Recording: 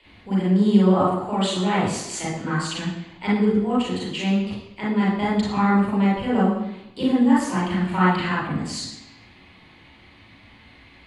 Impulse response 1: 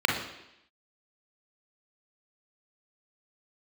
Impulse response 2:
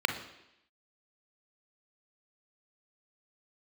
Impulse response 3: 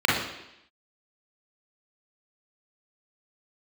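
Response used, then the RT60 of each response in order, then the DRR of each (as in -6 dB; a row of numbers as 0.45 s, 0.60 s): 3; 0.85 s, 0.85 s, 0.85 s; -0.5 dB, 5.5 dB, -6.0 dB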